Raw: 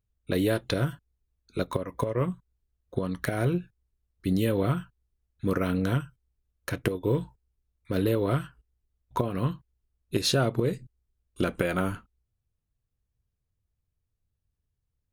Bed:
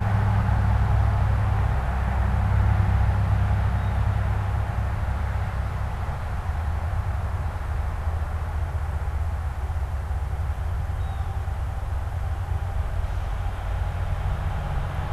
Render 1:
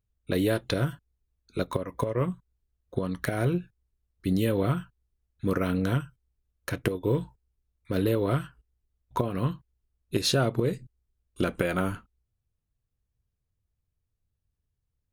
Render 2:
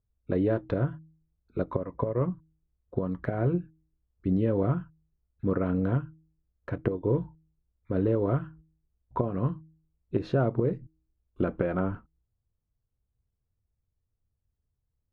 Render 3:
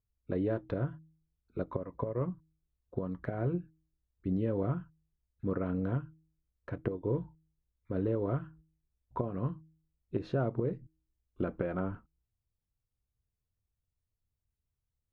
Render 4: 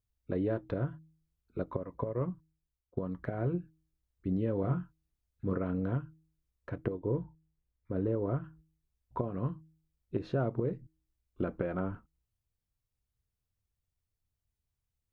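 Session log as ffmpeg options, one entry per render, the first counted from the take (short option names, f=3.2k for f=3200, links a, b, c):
-af anull
-af "lowpass=1.1k,bandreject=f=158.7:t=h:w=4,bandreject=f=317.4:t=h:w=4"
-af "volume=-6dB"
-filter_complex "[0:a]asettb=1/sr,asplit=3[a][b][c];[a]atrim=end=4.624[d];[b]atrim=start=4.62:end=5.58,asetpts=PTS-STARTPTS,afade=t=in:d=0.004:c=qsin,afade=t=out:st=0.956:d=0.004:c=qsin,asplit=2[e][f];[f]adelay=22,volume=-6.5dB[g];[e][g]amix=inputs=2:normalize=0,atrim=end_sample=42336[h];[c]atrim=start=5.576[i];[d][h]acrossfade=d=0.004:c1=hsin:c2=qsin[j];[j][i]acrossfade=d=0.004:c1=qsin:c2=hsin,asettb=1/sr,asplit=3[k][l][m];[k]atrim=end=6.974[n];[l]atrim=start=6.97:end=8.44,asetpts=PTS-STARTPTS,afade=t=in:d=0.004:c=qsin,afade=t=out:st=1.466:d=0.004:c=qsin,highshelf=f=3k:g=-11[o];[m]atrim=start=8.436[p];[n][o]acrossfade=d=0.004:c1=hsin:c2=qsin[q];[q][p]acrossfade=d=0.004:c1=qsin:c2=hsin,asplit=2[r][s];[r]atrim=end=2.97,asetpts=PTS-STARTPTS,afade=t=out:st=2.31:d=0.66:silence=0.188365[t];[s]atrim=start=2.97,asetpts=PTS-STARTPTS,afade=t=in:d=0.004:c=hsin:silence=0.188365[u];[t][u]concat=n=2:v=0:a=1"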